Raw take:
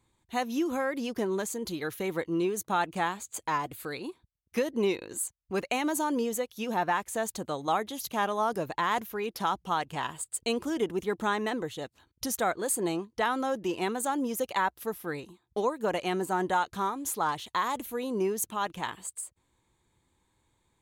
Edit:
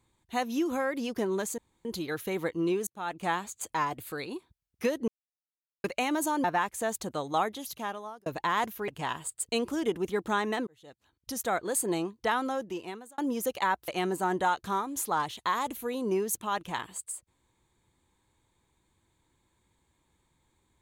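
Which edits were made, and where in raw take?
1.58 s: insert room tone 0.27 s
2.60–3.04 s: fade in
4.81–5.57 s: mute
6.17–6.78 s: delete
7.77–8.60 s: fade out
9.22–9.82 s: delete
11.61–12.61 s: fade in
13.30–14.12 s: fade out linear
14.82–15.97 s: delete

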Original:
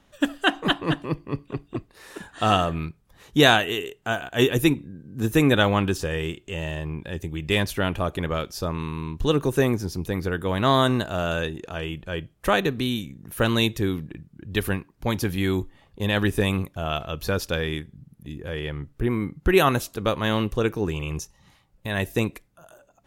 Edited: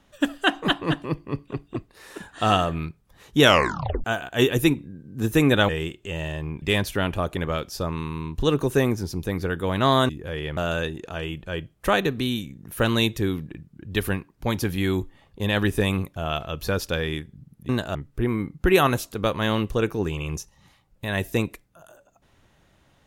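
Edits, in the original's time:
3.41 s: tape stop 0.63 s
5.69–6.12 s: delete
7.05–7.44 s: delete
10.91–11.17 s: swap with 18.29–18.77 s

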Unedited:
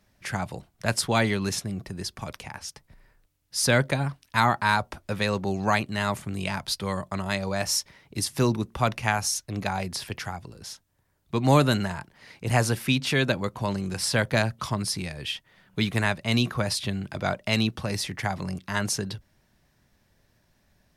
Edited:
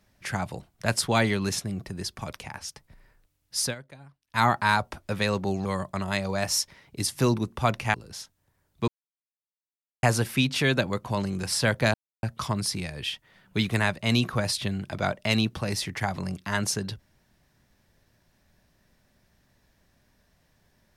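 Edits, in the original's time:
3.59–4.43 s: dip -22 dB, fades 0.16 s
5.65–6.83 s: delete
9.12–10.45 s: delete
11.39–12.54 s: mute
14.45 s: insert silence 0.29 s

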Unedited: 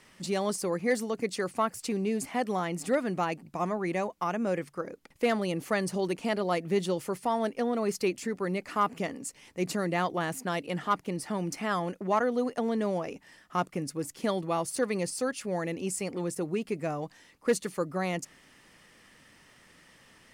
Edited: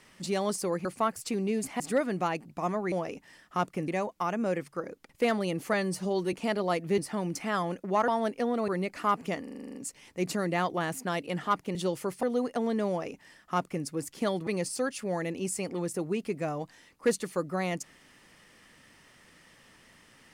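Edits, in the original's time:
0.85–1.43 s: delete
2.38–2.77 s: delete
5.74–6.14 s: stretch 1.5×
6.79–7.27 s: swap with 11.15–12.25 s
7.87–8.40 s: delete
9.15 s: stutter 0.04 s, 9 plays
12.91–13.87 s: copy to 3.89 s
14.49–14.89 s: delete

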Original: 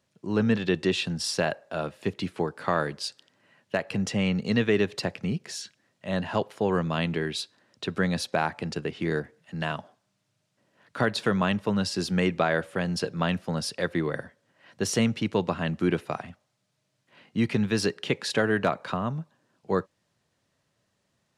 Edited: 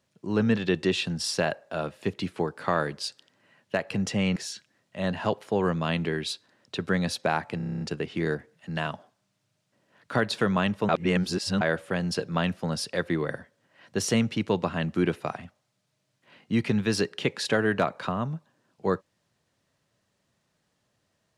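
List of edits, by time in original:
4.36–5.45 s: delete
8.66 s: stutter 0.03 s, 9 plays
11.74–12.46 s: reverse

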